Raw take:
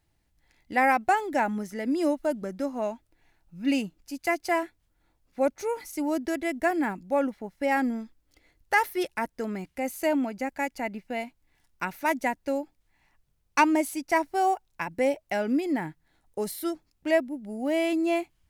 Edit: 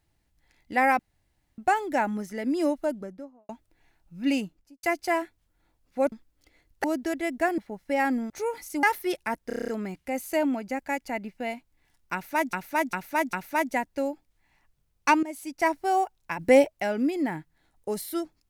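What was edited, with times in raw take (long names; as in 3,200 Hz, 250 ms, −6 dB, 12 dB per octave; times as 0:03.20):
0:00.99: splice in room tone 0.59 s
0:02.16–0:02.90: fade out and dull
0:03.84–0:04.24: fade out and dull
0:05.53–0:06.06: swap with 0:08.02–0:08.74
0:06.80–0:07.30: remove
0:09.38: stutter 0.03 s, 8 plays
0:11.83–0:12.23: repeat, 4 plays
0:13.73–0:14.15: fade in, from −18 dB
0:14.89–0:15.18: clip gain +7.5 dB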